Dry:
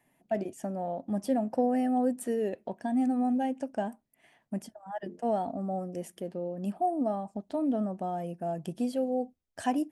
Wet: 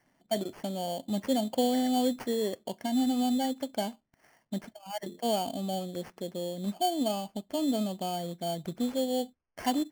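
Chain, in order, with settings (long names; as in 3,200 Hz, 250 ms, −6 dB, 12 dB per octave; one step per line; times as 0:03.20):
sample-rate reduction 3,800 Hz, jitter 0%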